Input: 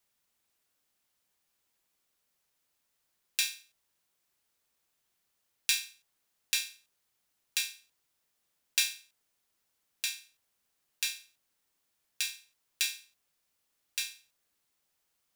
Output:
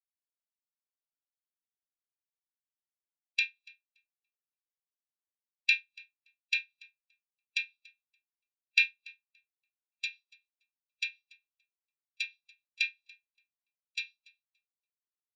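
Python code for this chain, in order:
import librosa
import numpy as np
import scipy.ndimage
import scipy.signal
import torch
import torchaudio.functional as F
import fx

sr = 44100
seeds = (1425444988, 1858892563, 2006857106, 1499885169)

y = fx.env_lowpass_down(x, sr, base_hz=2400.0, full_db=-30.0)
y = fx.echo_feedback(y, sr, ms=286, feedback_pct=43, wet_db=-10)
y = fx.spectral_expand(y, sr, expansion=2.5)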